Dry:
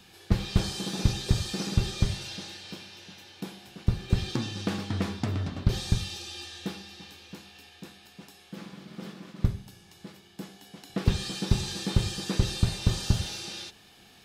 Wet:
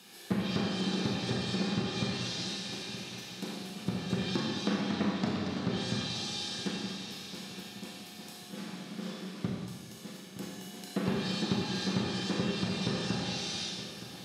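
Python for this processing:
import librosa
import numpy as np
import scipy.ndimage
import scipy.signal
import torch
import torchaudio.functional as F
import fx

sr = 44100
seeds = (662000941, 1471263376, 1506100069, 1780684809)

p1 = scipy.signal.sosfilt(scipy.signal.butter(4, 160.0, 'highpass', fs=sr, output='sos'), x)
p2 = fx.high_shelf(p1, sr, hz=7600.0, db=10.0)
p3 = fx.env_lowpass_down(p2, sr, base_hz=2100.0, full_db=-26.5)
p4 = p3 + fx.echo_feedback(p3, sr, ms=919, feedback_pct=52, wet_db=-13.5, dry=0)
p5 = fx.rev_schroeder(p4, sr, rt60_s=1.4, comb_ms=29, drr_db=-1.0)
y = F.gain(torch.from_numpy(p5), -2.0).numpy()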